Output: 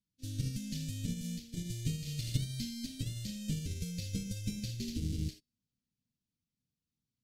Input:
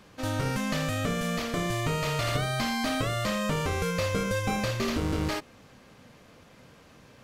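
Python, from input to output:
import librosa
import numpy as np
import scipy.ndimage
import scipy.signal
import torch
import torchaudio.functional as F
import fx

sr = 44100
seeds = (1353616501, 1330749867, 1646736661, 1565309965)

y = scipy.signal.sosfilt(scipy.signal.cheby1(2, 1.0, [200.0, 4500.0], 'bandstop', fs=sr, output='sos'), x)
y = fx.comb_fb(y, sr, f0_hz=240.0, decay_s=0.5, harmonics='all', damping=0.0, mix_pct=50)
y = fx.upward_expand(y, sr, threshold_db=-55.0, expansion=2.5)
y = y * 10.0 ** (6.0 / 20.0)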